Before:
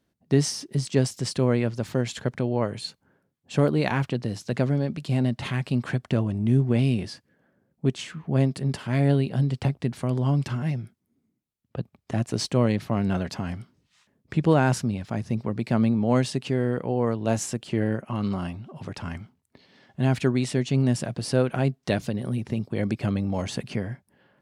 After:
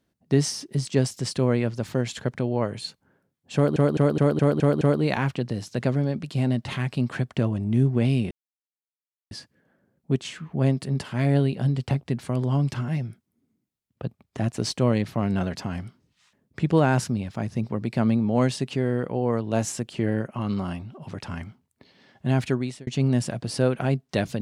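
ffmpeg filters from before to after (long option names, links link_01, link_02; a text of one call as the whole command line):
ffmpeg -i in.wav -filter_complex "[0:a]asplit=9[link_01][link_02][link_03][link_04][link_05][link_06][link_07][link_08][link_09];[link_01]atrim=end=3.762[link_10];[link_02]atrim=start=3.548:end=3.762[link_11];[link_03]atrim=start=3.548:end=3.762[link_12];[link_04]atrim=start=3.548:end=3.762[link_13];[link_05]atrim=start=3.548:end=3.762[link_14];[link_06]atrim=start=3.548:end=3.762[link_15];[link_07]atrim=start=3.548:end=7.05,asetpts=PTS-STARTPTS,afade=type=out:start_time=3.498:duration=0.004:curve=hsin,apad=pad_dur=1[link_16];[link_08]atrim=start=7.05:end=20.61,asetpts=PTS-STARTPTS,afade=type=in:duration=0.004:curve=hsin,afade=type=out:start_time=12.99:duration=0.57:curve=qsin[link_17];[link_09]atrim=start=20.61,asetpts=PTS-STARTPTS,afade=type=in:duration=0.004:curve=hsin[link_18];[link_10][link_11]acrossfade=duration=0.004:curve1=hsin:curve2=hsin[link_19];[link_19][link_12]acrossfade=duration=0.004:curve1=hsin:curve2=hsin[link_20];[link_20][link_13]acrossfade=duration=0.004:curve1=hsin:curve2=hsin[link_21];[link_21][link_14]acrossfade=duration=0.004:curve1=hsin:curve2=hsin[link_22];[link_22][link_15]acrossfade=duration=0.004:curve1=hsin:curve2=hsin[link_23];[link_16][link_17][link_18]concat=n=3:v=0:a=1[link_24];[link_23][link_24]acrossfade=duration=0.004:curve1=hsin:curve2=hsin" out.wav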